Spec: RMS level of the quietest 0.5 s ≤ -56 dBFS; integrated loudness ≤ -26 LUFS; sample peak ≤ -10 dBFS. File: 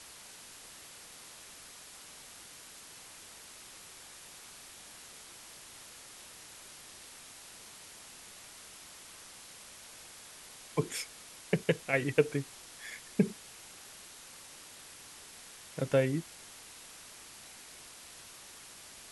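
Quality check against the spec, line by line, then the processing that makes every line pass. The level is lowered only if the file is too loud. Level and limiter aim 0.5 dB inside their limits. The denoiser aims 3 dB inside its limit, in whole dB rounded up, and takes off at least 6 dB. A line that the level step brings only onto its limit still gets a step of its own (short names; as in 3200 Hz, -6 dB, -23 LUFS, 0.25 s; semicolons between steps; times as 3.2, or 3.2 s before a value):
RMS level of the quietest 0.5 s -51 dBFS: fail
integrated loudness -40.0 LUFS: OK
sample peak -11.0 dBFS: OK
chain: denoiser 8 dB, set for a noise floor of -51 dBFS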